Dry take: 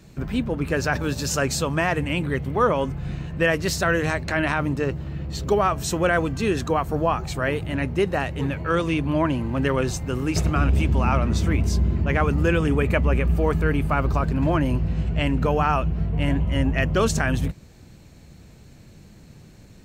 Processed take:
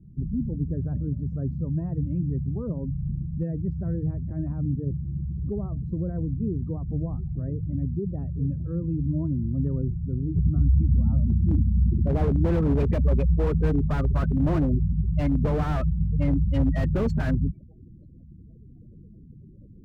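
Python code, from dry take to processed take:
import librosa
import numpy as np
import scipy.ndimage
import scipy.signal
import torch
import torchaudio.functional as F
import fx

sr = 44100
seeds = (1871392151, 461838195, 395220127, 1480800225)

y = fx.spec_gate(x, sr, threshold_db=-15, keep='strong')
y = fx.filter_sweep_lowpass(y, sr, from_hz=190.0, to_hz=2100.0, start_s=11.33, end_s=12.94, q=1.0)
y = fx.slew_limit(y, sr, full_power_hz=28.0)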